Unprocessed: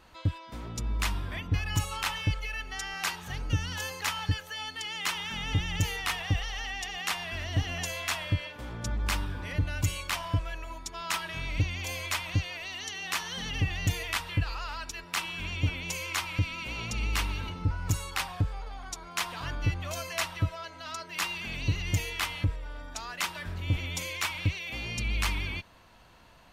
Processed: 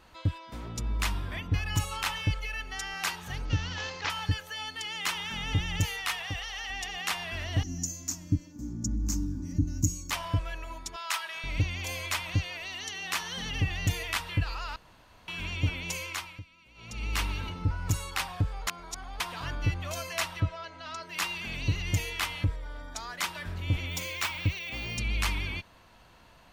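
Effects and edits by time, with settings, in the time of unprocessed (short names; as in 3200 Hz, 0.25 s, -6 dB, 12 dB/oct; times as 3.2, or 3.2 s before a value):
3.45–4.1 CVSD 32 kbps
5.85–6.7 low shelf 420 Hz -10.5 dB
7.63–10.11 EQ curve 110 Hz 0 dB, 300 Hz +10 dB, 460 Hz -19 dB, 730 Hz -18 dB, 3400 Hz -25 dB, 6600 Hz +10 dB, 9700 Hz -15 dB, 14000 Hz 0 dB
10.96–11.44 HPF 730 Hz
14.76–15.28 room tone
15.96–17.22 dip -21.5 dB, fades 0.48 s
18.67–19.2 reverse
20.4–21.03 air absorption 77 m
22.49–23.23 notch 2700 Hz, Q 6.8
23.89–24.98 careless resampling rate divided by 2×, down filtered, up hold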